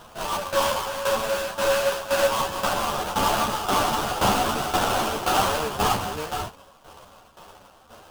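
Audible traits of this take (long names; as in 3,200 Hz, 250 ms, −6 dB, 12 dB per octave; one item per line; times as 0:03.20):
aliases and images of a low sample rate 2,100 Hz, jitter 20%
tremolo saw down 1.9 Hz, depth 75%
a shimmering, thickened sound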